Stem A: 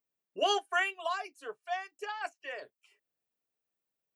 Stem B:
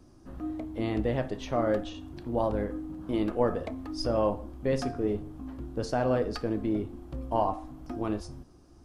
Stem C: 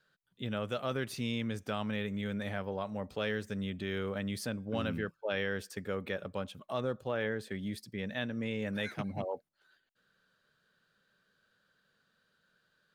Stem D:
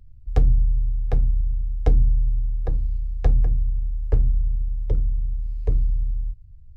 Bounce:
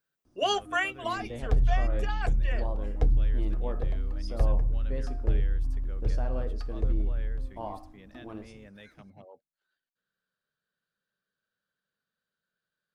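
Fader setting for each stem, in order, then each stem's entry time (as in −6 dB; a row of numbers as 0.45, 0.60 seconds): +1.5, −11.0, −14.5, −6.5 decibels; 0.00, 0.25, 0.00, 1.15 seconds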